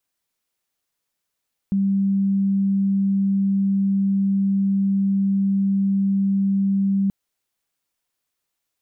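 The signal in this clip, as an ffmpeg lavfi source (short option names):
-f lavfi -i "aevalsrc='0.15*sin(2*PI*196*t)':d=5.38:s=44100"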